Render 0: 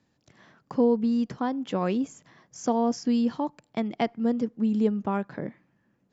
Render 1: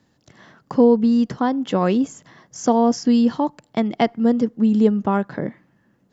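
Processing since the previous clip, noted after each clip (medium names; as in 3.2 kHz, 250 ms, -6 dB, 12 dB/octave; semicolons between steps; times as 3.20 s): band-stop 2.4 kHz, Q 11; trim +8 dB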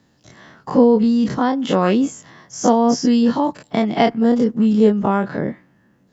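every event in the spectrogram widened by 60 ms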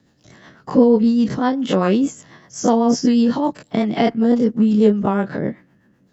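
rotary cabinet horn 8 Hz; trim +1.5 dB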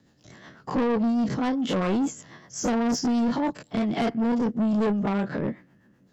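saturation -18 dBFS, distortion -8 dB; trim -2.5 dB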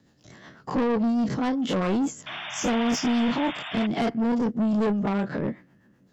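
painted sound noise, 2.26–3.87 s, 590–3700 Hz -36 dBFS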